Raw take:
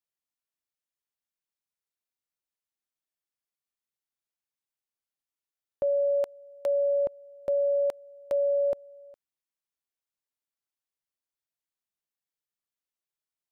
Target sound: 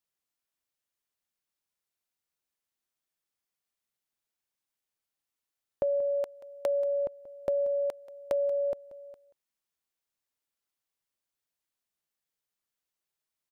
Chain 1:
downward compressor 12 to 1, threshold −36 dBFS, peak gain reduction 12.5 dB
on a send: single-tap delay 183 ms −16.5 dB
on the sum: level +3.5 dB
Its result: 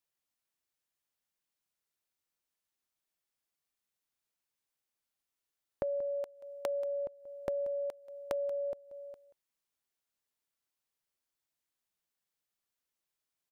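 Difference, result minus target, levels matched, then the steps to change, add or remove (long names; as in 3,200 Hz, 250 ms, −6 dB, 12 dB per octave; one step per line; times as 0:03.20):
downward compressor: peak gain reduction +6.5 dB
change: downward compressor 12 to 1, threshold −29 dBFS, peak gain reduction 6 dB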